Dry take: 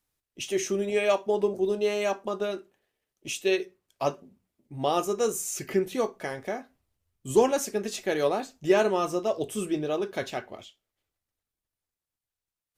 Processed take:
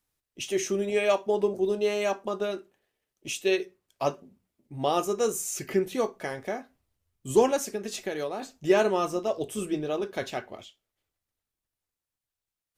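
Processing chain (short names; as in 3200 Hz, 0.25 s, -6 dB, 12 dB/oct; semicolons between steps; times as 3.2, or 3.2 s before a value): 7.56–8.42 compressor 10:1, threshold -28 dBFS, peak gain reduction 9.5 dB; 9.08–10.22 AM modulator 140 Hz, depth 15%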